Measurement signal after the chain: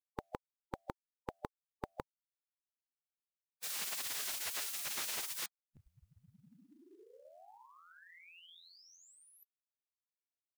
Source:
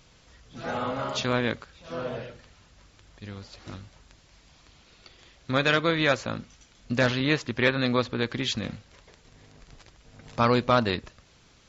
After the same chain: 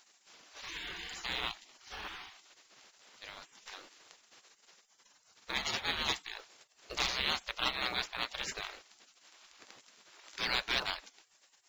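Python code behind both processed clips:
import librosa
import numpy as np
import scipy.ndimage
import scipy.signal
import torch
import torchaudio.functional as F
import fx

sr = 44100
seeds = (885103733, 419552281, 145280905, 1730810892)

p1 = fx.spec_gate(x, sr, threshold_db=-20, keep='weak')
p2 = fx.quant_float(p1, sr, bits=2)
p3 = p1 + (p2 * 10.0 ** (-3.5 / 20.0))
y = p3 * 10.0 ** (-1.5 / 20.0)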